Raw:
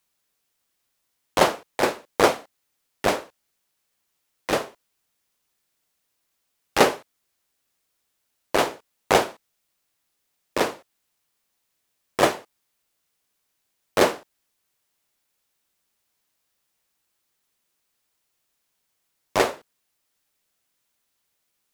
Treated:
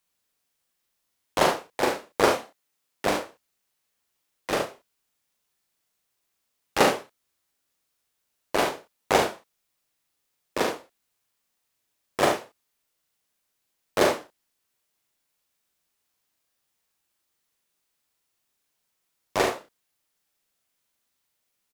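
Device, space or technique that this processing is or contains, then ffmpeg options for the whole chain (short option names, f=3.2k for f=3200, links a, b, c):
slapback doubling: -filter_complex "[0:a]asettb=1/sr,asplit=3[a][b][c];[a]atrim=end=2.384[d];[b]atrim=start=2.38:end=3.07,asetpts=PTS-STARTPTS,afade=t=in:d=0.004:c=qsin,afade=t=out:st=0.686:d=0.004:c=qsin,highpass=120[e];[c]atrim=start=3.066[f];[d][e]acrossfade=d=0.004:c1=hsin:c2=qsin[g];[g][f]acrossfade=d=0.004:c1=qsin:c2=hsin,asplit=3[h][i][j];[i]adelay=40,volume=-4.5dB[k];[j]adelay=70,volume=-7dB[l];[h][k][l]amix=inputs=3:normalize=0,volume=-4dB"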